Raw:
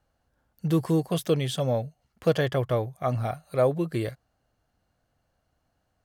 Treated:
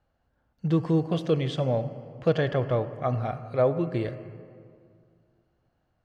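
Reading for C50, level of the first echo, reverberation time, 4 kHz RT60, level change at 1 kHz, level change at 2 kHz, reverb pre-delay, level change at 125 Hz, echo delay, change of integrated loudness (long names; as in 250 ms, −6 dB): 11.5 dB, no echo audible, 2.2 s, 1.4 s, −0.5 dB, −1.0 dB, 31 ms, +0.5 dB, no echo audible, 0.0 dB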